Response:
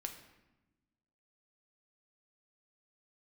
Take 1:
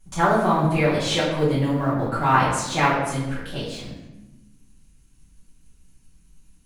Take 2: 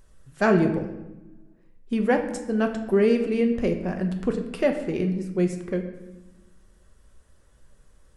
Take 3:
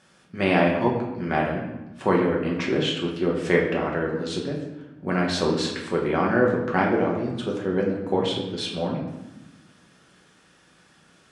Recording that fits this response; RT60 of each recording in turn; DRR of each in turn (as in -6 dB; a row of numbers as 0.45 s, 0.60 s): 2; 1.0 s, 1.0 s, 1.0 s; -11.5 dB, 4.5 dB, -3.0 dB